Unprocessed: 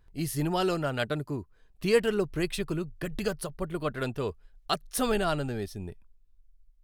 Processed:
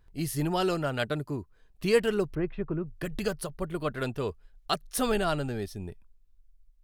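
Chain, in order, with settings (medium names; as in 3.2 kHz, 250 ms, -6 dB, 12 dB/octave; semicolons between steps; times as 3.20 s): 2.35–2.86 s: Bessel low-pass 1.3 kHz, order 4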